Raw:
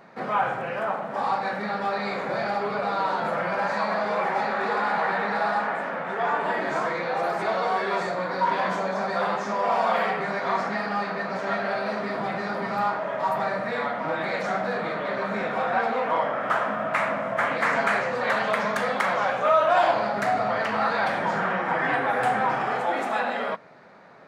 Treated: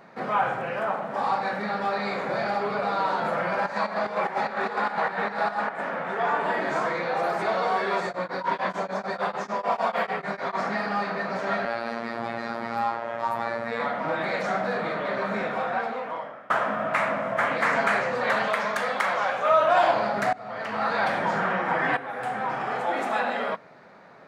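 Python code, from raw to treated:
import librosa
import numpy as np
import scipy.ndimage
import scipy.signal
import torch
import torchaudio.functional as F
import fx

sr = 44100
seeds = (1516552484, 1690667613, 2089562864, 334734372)

y = fx.volume_shaper(x, sr, bpm=148, per_beat=2, depth_db=-10, release_ms=97.0, shape='slow start', at=(3.66, 5.84))
y = fx.tremolo_abs(y, sr, hz=6.7, at=(8.0, 10.61), fade=0.02)
y = fx.robotise(y, sr, hz=116.0, at=(11.65, 13.8))
y = fx.low_shelf(y, sr, hz=350.0, db=-8.5, at=(18.48, 19.5))
y = fx.edit(y, sr, fx.fade_out_to(start_s=15.34, length_s=1.16, floor_db=-22.0),
    fx.fade_in_from(start_s=20.33, length_s=0.68, floor_db=-23.0),
    fx.fade_in_from(start_s=21.97, length_s=1.12, floor_db=-12.5), tone=tone)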